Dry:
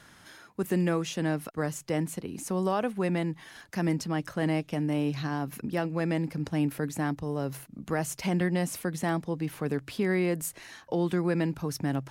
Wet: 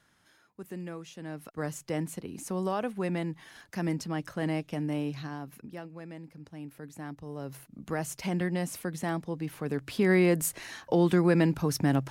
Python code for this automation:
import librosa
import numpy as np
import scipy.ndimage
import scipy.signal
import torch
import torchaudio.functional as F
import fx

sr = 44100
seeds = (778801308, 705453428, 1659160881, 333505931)

y = fx.gain(x, sr, db=fx.line((1.22, -13.0), (1.65, -3.0), (4.94, -3.0), (6.07, -15.5), (6.6, -15.5), (7.85, -3.0), (9.65, -3.0), (10.12, 4.0)))